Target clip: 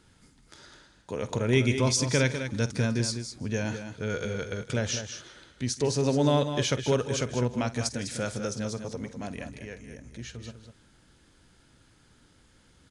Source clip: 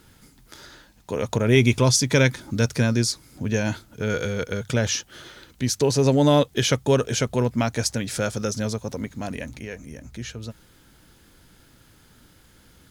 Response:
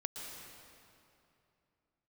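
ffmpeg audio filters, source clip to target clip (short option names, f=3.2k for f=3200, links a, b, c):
-filter_complex "[0:a]asplit=2[a][b];[b]aecho=0:1:159:0.126[c];[a][c]amix=inputs=2:normalize=0,aresample=22050,aresample=44100,asplit=2[d][e];[e]aecho=0:1:49|201:0.158|0.355[f];[d][f]amix=inputs=2:normalize=0,volume=-6.5dB"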